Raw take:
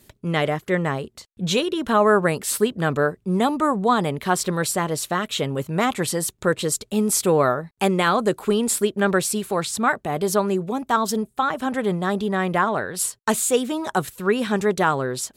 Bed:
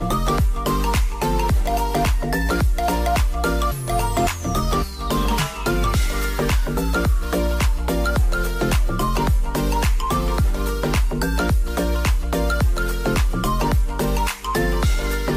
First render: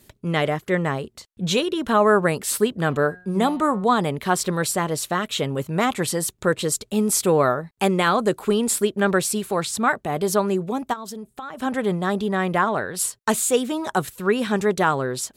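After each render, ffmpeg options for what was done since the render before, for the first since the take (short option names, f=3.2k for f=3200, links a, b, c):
-filter_complex "[0:a]asettb=1/sr,asplit=3[a][b][c];[a]atrim=end=2.874[d];[b]atrim=start=2.87:end=3.84,asetpts=PTS-STARTPTS,afade=t=in:d=0.004:c=qsin,afade=t=out:st=0.966:d=0.004:c=qsin,bandreject=f=180.8:t=h:w=4,bandreject=f=361.6:t=h:w=4,bandreject=f=542.4:t=h:w=4,bandreject=f=723.2:t=h:w=4,bandreject=f=904:t=h:w=4,bandreject=f=1.0848k:t=h:w=4,bandreject=f=1.2656k:t=h:w=4,bandreject=f=1.4464k:t=h:w=4,bandreject=f=1.6272k:t=h:w=4,bandreject=f=1.808k:t=h:w=4,bandreject=f=1.9888k:t=h:w=4,bandreject=f=2.1696k:t=h:w=4,bandreject=f=2.3504k:t=h:w=4,bandreject=f=2.5312k:t=h:w=4,bandreject=f=2.712k:t=h:w=4,bandreject=f=2.8928k:t=h:w=4,bandreject=f=3.0736k:t=h:w=4,bandreject=f=3.2544k:t=h:w=4,bandreject=f=3.4352k:t=h:w=4,bandreject=f=3.616k:t=h:w=4,bandreject=f=3.7968k:t=h:w=4,bandreject=f=3.9776k:t=h:w=4,bandreject=f=4.1584k:t=h:w=4,bandreject=f=4.3392k:t=h:w=4,bandreject=f=4.52k:t=h:w=4,bandreject=f=4.7008k:t=h:w=4,bandreject=f=4.8816k:t=h:w=4[e];[c]atrim=start=3.836[f];[d][e]acrossfade=d=0.004:c1=hsin:c2=qsin[g];[g][f]acrossfade=d=0.004:c1=qsin:c2=hsin,asplit=3[h][i][j];[h]afade=t=out:st=10.92:d=0.02[k];[i]acompressor=threshold=-31dB:ratio=6:attack=3.2:release=140:knee=1:detection=peak,afade=t=in:st=10.92:d=0.02,afade=t=out:st=11.57:d=0.02[l];[j]afade=t=in:st=11.57:d=0.02[m];[k][l][m]amix=inputs=3:normalize=0"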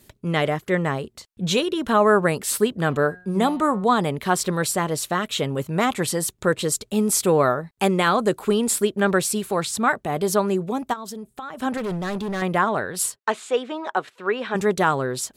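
-filter_complex "[0:a]asettb=1/sr,asplit=3[a][b][c];[a]atrim=end=11.774[d];[b]atrim=start=11.77:end=12.42,asetpts=PTS-STARTPTS,afade=t=in:d=0.004:c=qsin,afade=t=out:st=0.646:d=0.004:c=qsin,volume=24dB,asoftclip=hard,volume=-24dB[e];[c]atrim=start=12.416[f];[d][e]acrossfade=d=0.004:c1=hsin:c2=qsin[g];[g][f]acrossfade=d=0.004:c1=qsin:c2=hsin,asplit=3[h][i][j];[h]afade=t=out:st=13.15:d=0.02[k];[i]highpass=420,lowpass=3k,afade=t=in:st=13.15:d=0.02,afade=t=out:st=14.54:d=0.02[l];[j]afade=t=in:st=14.54:d=0.02[m];[k][l][m]amix=inputs=3:normalize=0"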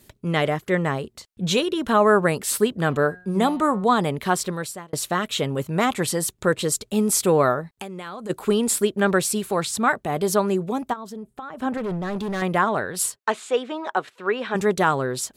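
-filter_complex "[0:a]asplit=3[a][b][c];[a]afade=t=out:st=7.63:d=0.02[d];[b]acompressor=threshold=-30dB:ratio=16:attack=3.2:release=140:knee=1:detection=peak,afade=t=in:st=7.63:d=0.02,afade=t=out:st=8.29:d=0.02[e];[c]afade=t=in:st=8.29:d=0.02[f];[d][e][f]amix=inputs=3:normalize=0,asettb=1/sr,asplit=3[g][h][i];[g]atrim=end=10.904[j];[h]atrim=start=10.9:end=12.16,asetpts=PTS-STARTPTS,afade=t=in:d=0.004:c=qsin,afade=t=out:st=1.256:d=0.004:c=qsin,highshelf=f=2.8k:g=-10[k];[i]atrim=start=12.156[l];[j][k]acrossfade=d=0.004:c1=hsin:c2=qsin[m];[m][l]acrossfade=d=0.004:c1=qsin:c2=hsin,asplit=2[n][o];[n]atrim=end=4.93,asetpts=PTS-STARTPTS,afade=t=out:st=4.27:d=0.66[p];[o]atrim=start=4.93,asetpts=PTS-STARTPTS,afade=t=in:d=0.004:c=hsin[q];[p][q]concat=n=2:v=0:a=1"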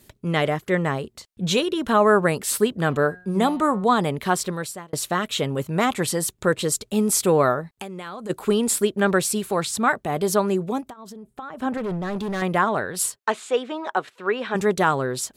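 -filter_complex "[0:a]asplit=3[a][b][c];[a]afade=t=out:st=10.8:d=0.02[d];[b]acompressor=threshold=-35dB:ratio=8:attack=3.2:release=140:knee=1:detection=peak,afade=t=in:st=10.8:d=0.02,afade=t=out:st=11.31:d=0.02[e];[c]afade=t=in:st=11.31:d=0.02[f];[d][e][f]amix=inputs=3:normalize=0"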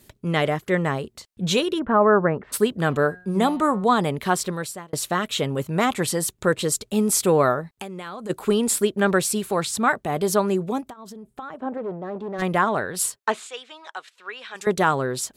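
-filter_complex "[0:a]asplit=3[a][b][c];[a]afade=t=out:st=1.78:d=0.02[d];[b]lowpass=f=1.7k:w=0.5412,lowpass=f=1.7k:w=1.3066,afade=t=in:st=1.78:d=0.02,afade=t=out:st=2.52:d=0.02[e];[c]afade=t=in:st=2.52:d=0.02[f];[d][e][f]amix=inputs=3:normalize=0,asplit=3[g][h][i];[g]afade=t=out:st=11.56:d=0.02[j];[h]bandpass=f=510:t=q:w=0.96,afade=t=in:st=11.56:d=0.02,afade=t=out:st=12.38:d=0.02[k];[i]afade=t=in:st=12.38:d=0.02[l];[j][k][l]amix=inputs=3:normalize=0,asettb=1/sr,asplit=3[m][n][o];[m]atrim=end=13.474[p];[n]atrim=start=13.47:end=14.67,asetpts=PTS-STARTPTS,afade=t=in:d=0.004:c=qsin,afade=t=out:st=1.196:d=0.004:c=qsin,bandpass=f=5.9k:t=q:w=0.56[q];[o]atrim=start=14.666[r];[p][q]acrossfade=d=0.004:c1=hsin:c2=qsin[s];[s][r]acrossfade=d=0.004:c1=qsin:c2=hsin"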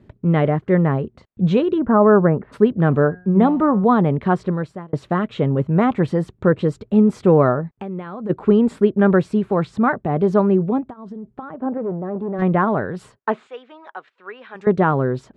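-af "lowpass=1.7k,equalizer=f=140:w=0.35:g=9"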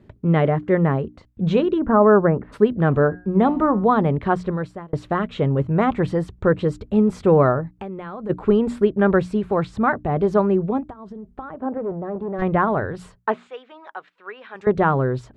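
-af "bandreject=f=60:t=h:w=6,bandreject=f=120:t=h:w=6,bandreject=f=180:t=h:w=6,bandreject=f=240:t=h:w=6,bandreject=f=300:t=h:w=6,asubboost=boost=5.5:cutoff=75"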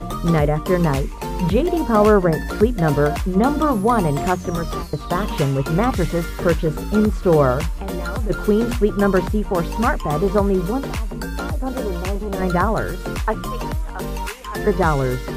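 -filter_complex "[1:a]volume=-6dB[a];[0:a][a]amix=inputs=2:normalize=0"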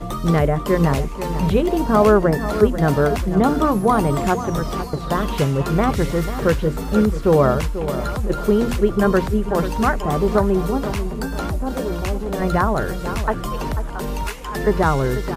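-filter_complex "[0:a]asplit=2[a][b];[b]adelay=491,lowpass=f=2.3k:p=1,volume=-11dB,asplit=2[c][d];[d]adelay=491,lowpass=f=2.3k:p=1,volume=0.37,asplit=2[e][f];[f]adelay=491,lowpass=f=2.3k:p=1,volume=0.37,asplit=2[g][h];[h]adelay=491,lowpass=f=2.3k:p=1,volume=0.37[i];[a][c][e][g][i]amix=inputs=5:normalize=0"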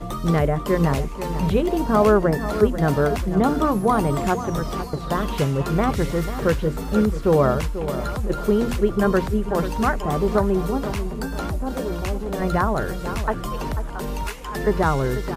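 -af "volume=-2.5dB"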